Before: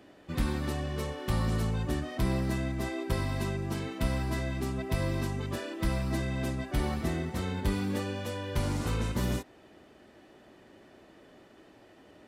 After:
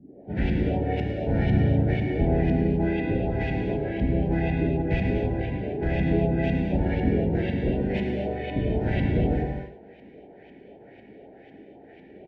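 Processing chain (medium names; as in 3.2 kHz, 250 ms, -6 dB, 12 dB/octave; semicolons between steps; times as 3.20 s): harmony voices -5 st -2 dB, +4 st -1 dB; LFO low-pass saw up 2 Hz 200–3000 Hz; Chebyshev band-stop 750–1800 Hz, order 2; treble shelf 6.9 kHz -10 dB; delay 108 ms -13 dB; gated-style reverb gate 290 ms flat, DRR 1 dB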